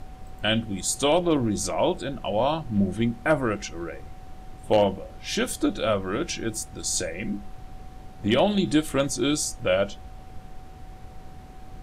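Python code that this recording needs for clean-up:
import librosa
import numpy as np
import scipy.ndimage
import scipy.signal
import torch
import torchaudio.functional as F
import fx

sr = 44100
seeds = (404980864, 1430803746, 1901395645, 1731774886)

y = fx.fix_declip(x, sr, threshold_db=-11.0)
y = fx.notch(y, sr, hz=750.0, q=30.0)
y = fx.noise_reduce(y, sr, print_start_s=11.06, print_end_s=11.56, reduce_db=27.0)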